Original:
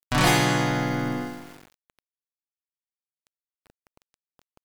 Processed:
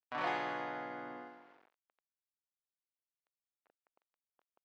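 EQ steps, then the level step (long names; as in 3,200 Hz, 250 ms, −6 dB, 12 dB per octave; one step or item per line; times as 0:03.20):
high-pass filter 600 Hz 12 dB per octave
head-to-tape spacing loss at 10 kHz 44 dB
−7.5 dB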